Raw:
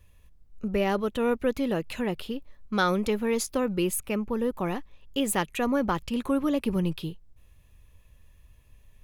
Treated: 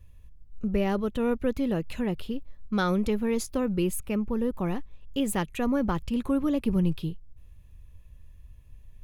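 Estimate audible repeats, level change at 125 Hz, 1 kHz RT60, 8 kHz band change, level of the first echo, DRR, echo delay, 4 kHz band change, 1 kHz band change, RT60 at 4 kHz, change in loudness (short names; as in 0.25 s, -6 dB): none, +3.0 dB, none, -4.5 dB, none, none, none, -4.5 dB, -3.5 dB, none, -0.5 dB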